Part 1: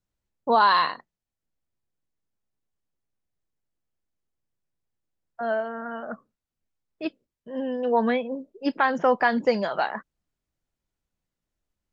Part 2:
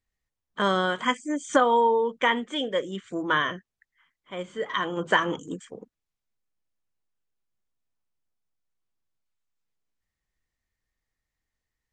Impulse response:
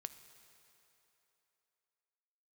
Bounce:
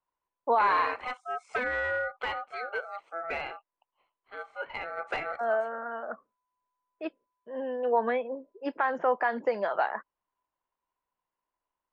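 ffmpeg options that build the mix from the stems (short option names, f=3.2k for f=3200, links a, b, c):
-filter_complex "[0:a]alimiter=limit=-14dB:level=0:latency=1:release=105,volume=-0.5dB[a];[1:a]aeval=exprs='val(0)*sin(2*PI*1000*n/s)':c=same,asoftclip=type=hard:threshold=-19.5dB,volume=-2.5dB[b];[a][b]amix=inputs=2:normalize=0,acrossover=split=360 2400:gain=0.141 1 0.126[c][d][e];[c][d][e]amix=inputs=3:normalize=0"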